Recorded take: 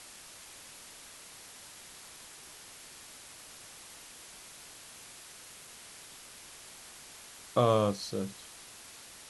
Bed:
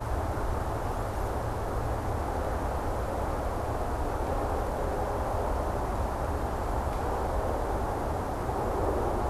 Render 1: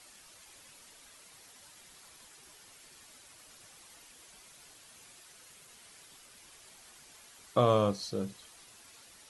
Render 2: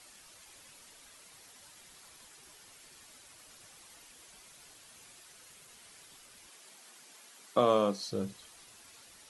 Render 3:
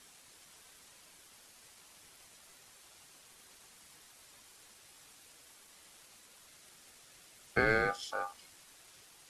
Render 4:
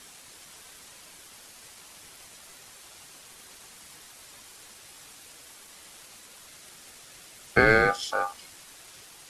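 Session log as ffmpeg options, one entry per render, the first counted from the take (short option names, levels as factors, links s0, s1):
-af "afftdn=nr=8:nf=-51"
-filter_complex "[0:a]asettb=1/sr,asplit=3[s0][s1][s2];[s0]atrim=end=6.474[s3];[s1]atrim=start=6.47:end=8.11,asetpts=PTS-STARTPTS,afade=t=in:d=0.004:c=qsin,afade=t=out:st=1.636:d=0.004:c=qsin,highpass=f=170:w=0.5412,highpass=f=170:w=1.3066[s4];[s2]atrim=start=8.106[s5];[s3][s4]acrossfade=d=0.004:c1=hsin:c2=qsin[s6];[s6][s5]acrossfade=d=0.004:c1=qsin:c2=hsin"
-af "aeval=exprs='val(0)*sin(2*PI*1000*n/s)':c=same"
-af "volume=2.99"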